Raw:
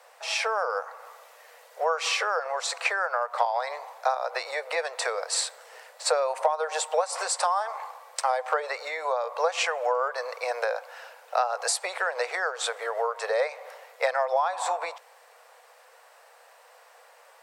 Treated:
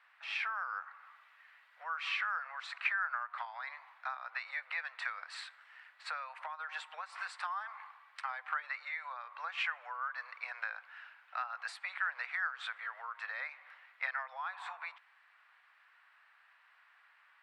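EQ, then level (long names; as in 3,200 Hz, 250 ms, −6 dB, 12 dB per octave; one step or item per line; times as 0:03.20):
high-pass filter 1,400 Hz 24 dB per octave
high-frequency loss of the air 500 metres
0.0 dB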